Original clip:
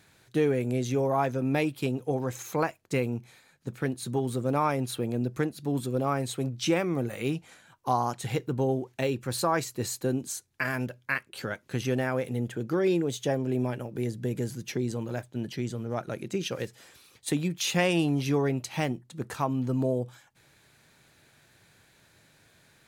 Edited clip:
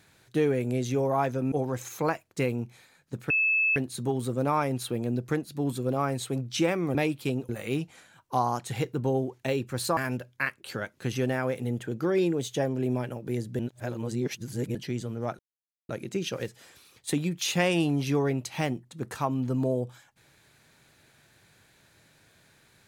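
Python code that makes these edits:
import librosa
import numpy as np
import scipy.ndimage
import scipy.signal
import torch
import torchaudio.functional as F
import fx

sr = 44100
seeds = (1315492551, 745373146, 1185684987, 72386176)

y = fx.edit(x, sr, fx.move(start_s=1.52, length_s=0.54, to_s=7.03),
    fx.insert_tone(at_s=3.84, length_s=0.46, hz=2610.0, db=-21.0),
    fx.cut(start_s=9.51, length_s=1.15),
    fx.reverse_span(start_s=14.28, length_s=1.16),
    fx.insert_silence(at_s=16.08, length_s=0.5), tone=tone)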